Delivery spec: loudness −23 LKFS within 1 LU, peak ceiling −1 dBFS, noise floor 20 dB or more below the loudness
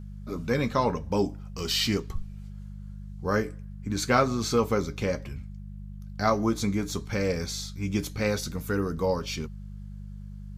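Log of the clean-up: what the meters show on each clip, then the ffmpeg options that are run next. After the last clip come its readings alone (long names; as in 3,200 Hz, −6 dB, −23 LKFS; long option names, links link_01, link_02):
mains hum 50 Hz; hum harmonics up to 200 Hz; level of the hum −37 dBFS; integrated loudness −28.0 LKFS; sample peak −8.5 dBFS; target loudness −23.0 LKFS
→ -af "bandreject=frequency=50:width_type=h:width=4,bandreject=frequency=100:width_type=h:width=4,bandreject=frequency=150:width_type=h:width=4,bandreject=frequency=200:width_type=h:width=4"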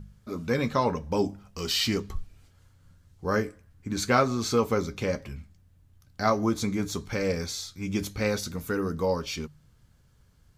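mains hum none found; integrated loudness −28.5 LKFS; sample peak −8.5 dBFS; target loudness −23.0 LKFS
→ -af "volume=5.5dB"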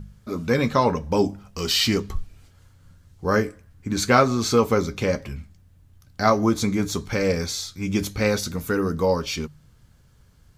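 integrated loudness −23.0 LKFS; sample peak −3.0 dBFS; background noise floor −55 dBFS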